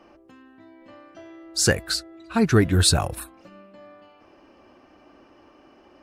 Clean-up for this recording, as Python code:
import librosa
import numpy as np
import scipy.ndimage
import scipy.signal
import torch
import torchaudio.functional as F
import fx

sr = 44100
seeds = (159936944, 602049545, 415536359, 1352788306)

y = fx.fix_declip(x, sr, threshold_db=-7.0)